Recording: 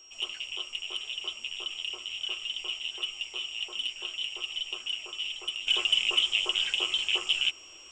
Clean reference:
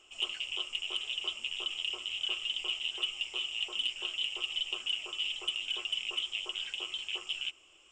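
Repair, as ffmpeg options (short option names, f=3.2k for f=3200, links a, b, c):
-af "bandreject=f=5.6k:w=30,asetnsamples=n=441:p=0,asendcmd='5.67 volume volume -9.5dB',volume=0dB"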